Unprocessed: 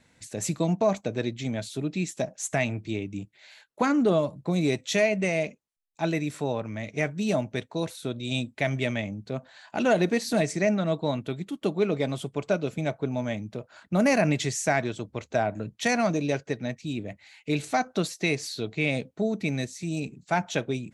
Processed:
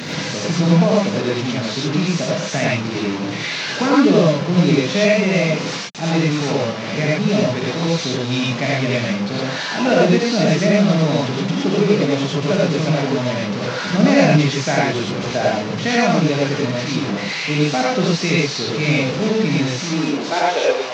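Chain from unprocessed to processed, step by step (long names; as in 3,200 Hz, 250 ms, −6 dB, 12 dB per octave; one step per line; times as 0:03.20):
linear delta modulator 32 kbit/s, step −25.5 dBFS
high-pass filter sweep 170 Hz → 670 Hz, 0:19.68–0:20.87
reverb whose tail is shaped and stops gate 140 ms rising, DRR −5 dB
level +1.5 dB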